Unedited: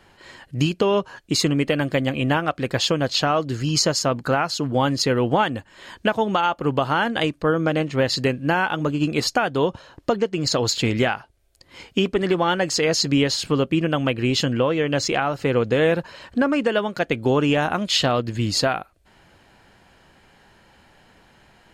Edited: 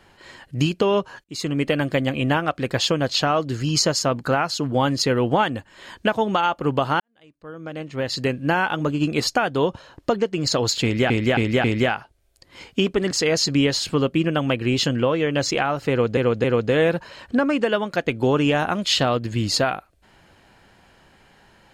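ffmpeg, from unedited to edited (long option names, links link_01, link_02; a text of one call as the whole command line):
ffmpeg -i in.wav -filter_complex "[0:a]asplit=9[link_01][link_02][link_03][link_04][link_05][link_06][link_07][link_08][link_09];[link_01]atrim=end=1.24,asetpts=PTS-STARTPTS,afade=type=out:start_time=1.236:duration=0.004:curve=hsin[link_10];[link_02]atrim=start=1.24:end=7,asetpts=PTS-STARTPTS,afade=type=in:duration=0.42,afade=type=out:start_time=5.756:duration=0.004:curve=hsin[link_11];[link_03]atrim=start=7:end=11.102,asetpts=PTS-STARTPTS,afade=type=in:duration=1.4:curve=qua[link_12];[link_04]atrim=start=10.828:end=11.102[link_13];[link_05]atrim=start=10.828:end=11.102[link_14];[link_06]atrim=start=10.828:end=12.302[link_15];[link_07]atrim=start=12.678:end=15.742[link_16];[link_08]atrim=start=15.468:end=15.742[link_17];[link_09]atrim=start=15.468[link_18];[link_10][link_11][link_12]concat=n=3:v=0:a=1[link_19];[link_19][link_13]acrossfade=duration=0.004:curve1=hsin:curve2=hsin[link_20];[link_20][link_14]acrossfade=duration=0.004:curve1=hsin:curve2=hsin[link_21];[link_21][link_15]acrossfade=duration=0.004:curve1=hsin:curve2=hsin[link_22];[link_22][link_16]acrossfade=duration=0.004:curve1=hsin:curve2=hsin[link_23];[link_23][link_17]acrossfade=duration=0.004:curve1=hsin:curve2=hsin[link_24];[link_24][link_18]acrossfade=duration=0.004:curve1=hsin:curve2=hsin" out.wav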